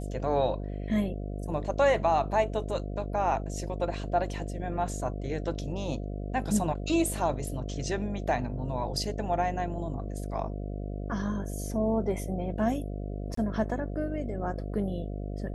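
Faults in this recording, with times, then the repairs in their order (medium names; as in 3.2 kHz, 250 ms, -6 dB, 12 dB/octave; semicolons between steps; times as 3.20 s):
buzz 50 Hz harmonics 14 -35 dBFS
13.35–13.37 s: dropout 24 ms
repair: de-hum 50 Hz, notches 14; interpolate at 13.35 s, 24 ms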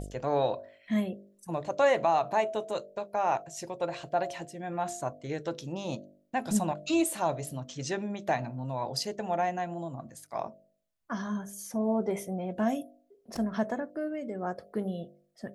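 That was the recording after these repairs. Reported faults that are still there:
nothing left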